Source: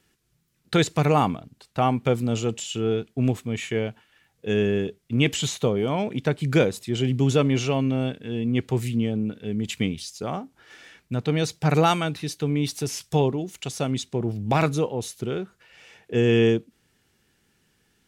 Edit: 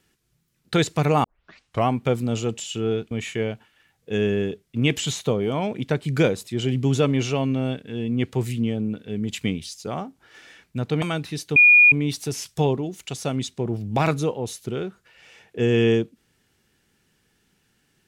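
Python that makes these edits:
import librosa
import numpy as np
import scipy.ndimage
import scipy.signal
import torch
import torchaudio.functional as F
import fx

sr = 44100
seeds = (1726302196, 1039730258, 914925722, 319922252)

y = fx.edit(x, sr, fx.tape_start(start_s=1.24, length_s=0.64),
    fx.cut(start_s=3.11, length_s=0.36),
    fx.cut(start_s=11.38, length_s=0.55),
    fx.insert_tone(at_s=12.47, length_s=0.36, hz=2440.0, db=-9.0), tone=tone)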